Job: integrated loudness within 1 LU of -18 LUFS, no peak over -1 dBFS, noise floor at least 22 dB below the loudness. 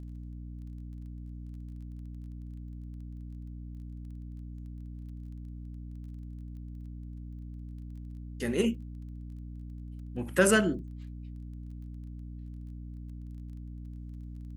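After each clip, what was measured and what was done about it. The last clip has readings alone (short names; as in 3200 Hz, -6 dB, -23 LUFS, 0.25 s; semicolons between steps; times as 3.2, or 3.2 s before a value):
ticks 19/s; hum 60 Hz; harmonics up to 300 Hz; hum level -39 dBFS; loudness -37.0 LUFS; peak -9.0 dBFS; loudness target -18.0 LUFS
-> de-click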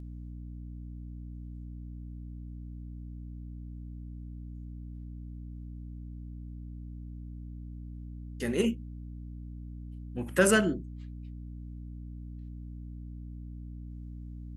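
ticks 0.069/s; hum 60 Hz; harmonics up to 300 Hz; hum level -39 dBFS
-> notches 60/120/180/240/300 Hz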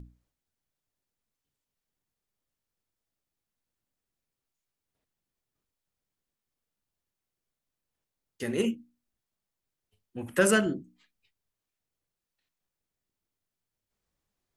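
hum none; loudness -27.5 LUFS; peak -9.5 dBFS; loudness target -18.0 LUFS
-> gain +9.5 dB; limiter -1 dBFS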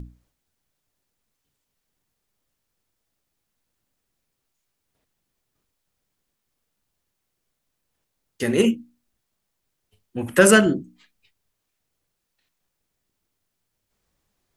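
loudness -18.5 LUFS; peak -1.0 dBFS; noise floor -79 dBFS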